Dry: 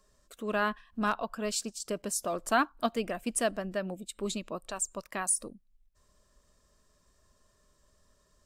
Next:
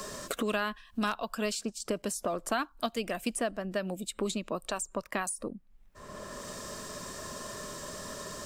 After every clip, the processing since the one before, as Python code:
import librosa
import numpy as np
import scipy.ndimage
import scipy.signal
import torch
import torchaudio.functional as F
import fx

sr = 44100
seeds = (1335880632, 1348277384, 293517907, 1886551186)

y = fx.band_squash(x, sr, depth_pct=100)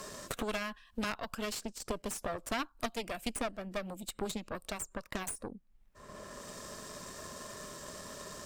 y = fx.cheby_harmonics(x, sr, harmonics=(4,), levels_db=(-8,), full_scale_db=-16.0)
y = y * librosa.db_to_amplitude(-5.0)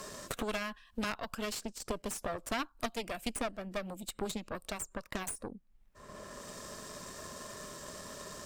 y = x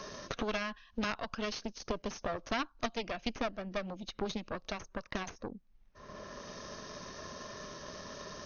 y = fx.brickwall_lowpass(x, sr, high_hz=6600.0)
y = y * librosa.db_to_amplitude(1.0)